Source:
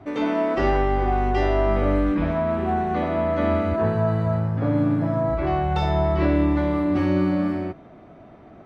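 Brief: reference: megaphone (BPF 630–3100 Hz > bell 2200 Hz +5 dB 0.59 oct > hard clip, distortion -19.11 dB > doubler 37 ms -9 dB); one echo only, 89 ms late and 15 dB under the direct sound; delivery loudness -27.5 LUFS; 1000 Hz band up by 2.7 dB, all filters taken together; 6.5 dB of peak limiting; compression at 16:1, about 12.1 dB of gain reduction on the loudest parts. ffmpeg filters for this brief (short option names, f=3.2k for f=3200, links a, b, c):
-filter_complex "[0:a]equalizer=f=1k:t=o:g=5.5,acompressor=threshold=-27dB:ratio=16,alimiter=level_in=1.5dB:limit=-24dB:level=0:latency=1,volume=-1.5dB,highpass=630,lowpass=3.1k,equalizer=f=2.2k:t=o:w=0.59:g=5,aecho=1:1:89:0.178,asoftclip=type=hard:threshold=-32.5dB,asplit=2[a][b];[b]adelay=37,volume=-9dB[c];[a][c]amix=inputs=2:normalize=0,volume=11dB"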